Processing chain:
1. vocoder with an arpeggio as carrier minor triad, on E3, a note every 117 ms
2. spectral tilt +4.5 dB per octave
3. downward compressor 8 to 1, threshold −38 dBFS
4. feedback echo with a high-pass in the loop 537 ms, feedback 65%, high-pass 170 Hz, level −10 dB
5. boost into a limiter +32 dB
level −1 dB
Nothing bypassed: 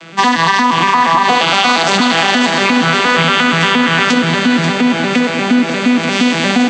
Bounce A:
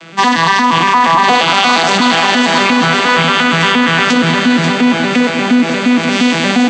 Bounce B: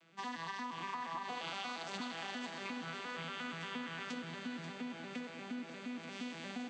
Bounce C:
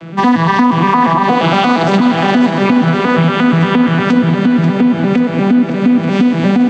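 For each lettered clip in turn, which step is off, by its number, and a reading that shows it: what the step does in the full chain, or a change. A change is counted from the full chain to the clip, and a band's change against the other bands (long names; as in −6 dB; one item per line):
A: 3, average gain reduction 3.5 dB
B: 5, change in crest factor +3.5 dB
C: 2, 4 kHz band −11.5 dB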